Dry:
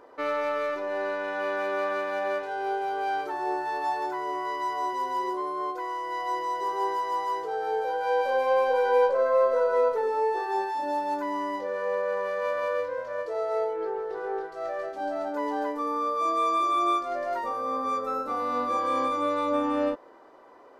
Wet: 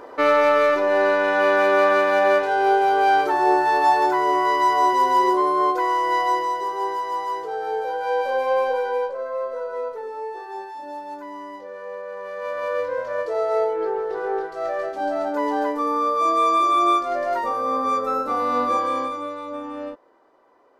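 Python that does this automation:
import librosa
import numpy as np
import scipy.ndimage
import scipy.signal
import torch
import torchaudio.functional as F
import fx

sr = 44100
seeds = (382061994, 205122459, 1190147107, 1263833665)

y = fx.gain(x, sr, db=fx.line((6.14, 11.5), (6.7, 2.5), (8.66, 2.5), (9.15, -5.5), (12.12, -5.5), (12.95, 6.5), (18.72, 6.5), (19.39, -6.0)))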